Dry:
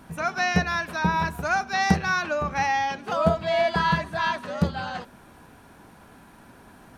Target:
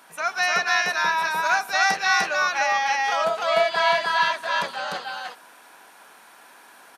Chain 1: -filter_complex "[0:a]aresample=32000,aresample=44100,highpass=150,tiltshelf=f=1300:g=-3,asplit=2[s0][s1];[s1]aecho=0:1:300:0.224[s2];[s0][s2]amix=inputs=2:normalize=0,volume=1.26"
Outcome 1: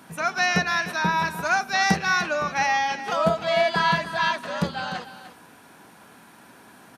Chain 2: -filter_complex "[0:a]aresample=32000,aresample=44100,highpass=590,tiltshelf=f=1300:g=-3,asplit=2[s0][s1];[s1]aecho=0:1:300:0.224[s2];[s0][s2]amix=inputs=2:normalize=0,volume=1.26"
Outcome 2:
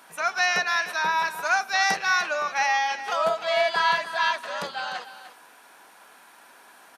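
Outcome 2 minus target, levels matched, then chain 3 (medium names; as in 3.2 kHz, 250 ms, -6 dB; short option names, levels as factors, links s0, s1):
echo-to-direct -12 dB
-filter_complex "[0:a]aresample=32000,aresample=44100,highpass=590,tiltshelf=f=1300:g=-3,asplit=2[s0][s1];[s1]aecho=0:1:300:0.891[s2];[s0][s2]amix=inputs=2:normalize=0,volume=1.26"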